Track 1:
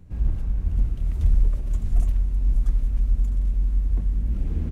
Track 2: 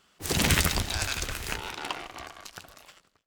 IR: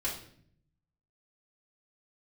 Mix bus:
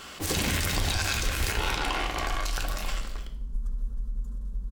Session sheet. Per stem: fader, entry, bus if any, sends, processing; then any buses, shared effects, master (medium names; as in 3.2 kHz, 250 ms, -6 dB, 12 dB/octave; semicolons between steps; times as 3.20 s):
-4.5 dB, 1.00 s, send -14.5 dB, peak limiter -20 dBFS, peak gain reduction 10.5 dB; static phaser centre 460 Hz, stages 8
-6.0 dB, 0.00 s, send -3.5 dB, level flattener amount 50%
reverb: on, RT60 0.60 s, pre-delay 3 ms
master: peak limiter -15.5 dBFS, peak gain reduction 7.5 dB